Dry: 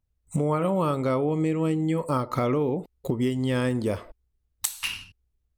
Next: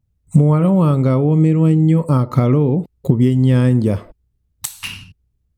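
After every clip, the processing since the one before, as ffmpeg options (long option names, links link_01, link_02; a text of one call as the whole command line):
ffmpeg -i in.wav -af "equalizer=frequency=140:width=0.62:gain=14.5,volume=2dB" out.wav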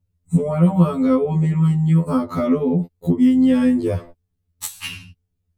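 ffmpeg -i in.wav -af "afftfilt=real='re*2*eq(mod(b,4),0)':imag='im*2*eq(mod(b,4),0)':win_size=2048:overlap=0.75" out.wav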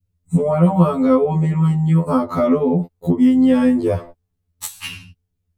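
ffmpeg -i in.wav -af "adynamicequalizer=threshold=0.0178:dfrequency=790:dqfactor=0.83:tfrequency=790:tqfactor=0.83:attack=5:release=100:ratio=0.375:range=3.5:mode=boostabove:tftype=bell" out.wav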